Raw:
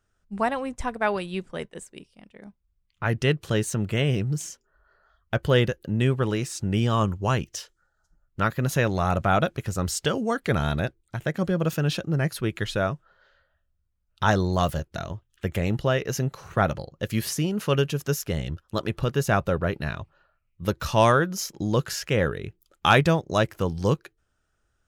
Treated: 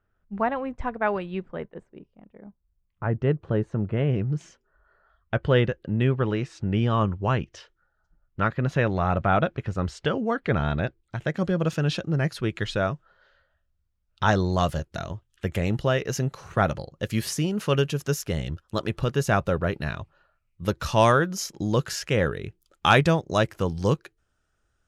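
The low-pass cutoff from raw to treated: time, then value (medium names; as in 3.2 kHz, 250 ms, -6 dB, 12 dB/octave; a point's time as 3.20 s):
1.38 s 2.1 kHz
1.89 s 1.1 kHz
3.87 s 1.1 kHz
4.46 s 2.8 kHz
10.66 s 2.8 kHz
11.36 s 6.7 kHz
14.33 s 6.7 kHz
14.90 s 11 kHz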